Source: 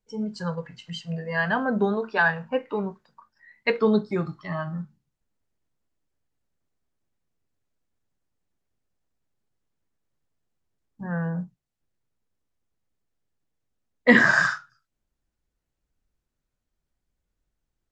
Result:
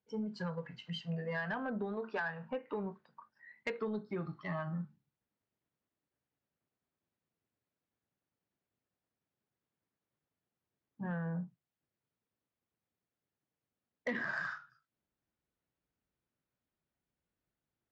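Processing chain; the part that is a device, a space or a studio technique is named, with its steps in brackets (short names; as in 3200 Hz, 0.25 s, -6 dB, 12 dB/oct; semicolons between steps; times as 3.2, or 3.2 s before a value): AM radio (BPF 110–3400 Hz; compressor 8:1, threshold -30 dBFS, peak gain reduction 19 dB; soft clip -23.5 dBFS, distortion -22 dB); gain -3.5 dB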